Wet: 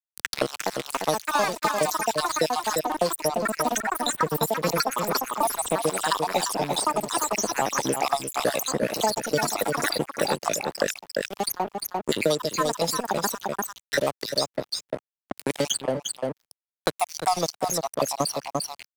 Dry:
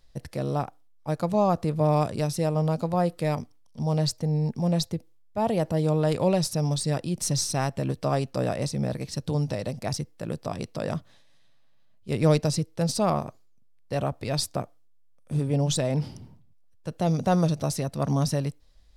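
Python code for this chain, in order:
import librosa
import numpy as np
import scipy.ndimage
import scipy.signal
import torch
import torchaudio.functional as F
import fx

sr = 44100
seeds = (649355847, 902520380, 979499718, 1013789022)

y = fx.spec_dropout(x, sr, seeds[0], share_pct=69)
y = scipy.signal.sosfilt(scipy.signal.butter(2, 360.0, 'highpass', fs=sr, output='sos'), y)
y = fx.high_shelf(y, sr, hz=3300.0, db=6.5)
y = fx.rider(y, sr, range_db=5, speed_s=0.5)
y = np.sign(y) * np.maximum(np.abs(y) - 10.0 ** (-44.5 / 20.0), 0.0)
y = fx.echo_pitch(y, sr, ms=369, semitones=6, count=2, db_per_echo=-3.0)
y = y + 10.0 ** (-8.0 / 20.0) * np.pad(y, (int(347 * sr / 1000.0), 0))[:len(y)]
y = fx.band_squash(y, sr, depth_pct=100)
y = y * librosa.db_to_amplitude(7.5)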